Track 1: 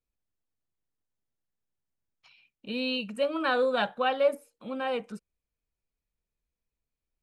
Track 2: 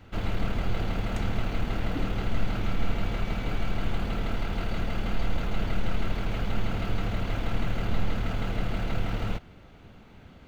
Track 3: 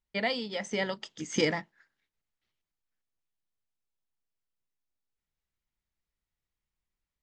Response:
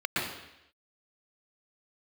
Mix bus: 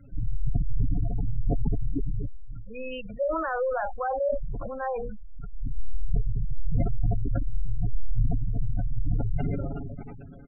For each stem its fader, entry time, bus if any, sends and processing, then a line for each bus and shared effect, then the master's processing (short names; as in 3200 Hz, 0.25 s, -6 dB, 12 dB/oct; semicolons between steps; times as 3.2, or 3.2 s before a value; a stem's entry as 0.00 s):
-9.0 dB, 0.00 s, bus A, no send, band shelf 1200 Hz +12.5 dB 2.7 oct; notches 60/120/180/240/300/360/420/480 Hz
0.0 dB, 0.00 s, no bus, no send, comb 7.2 ms, depth 68%; auto duck -21 dB, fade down 0.25 s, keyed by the first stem
-15.5 dB, 0.10 s, bus A, send -10.5 dB, negative-ratio compressor -33 dBFS, ratio -1
bus A: 0.0 dB, bell 3200 Hz -8 dB 1.7 oct; limiter -20 dBFS, peak gain reduction 7 dB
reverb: on, RT60 0.85 s, pre-delay 0.111 s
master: spectral gate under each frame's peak -15 dB strong; sustainer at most 22 dB/s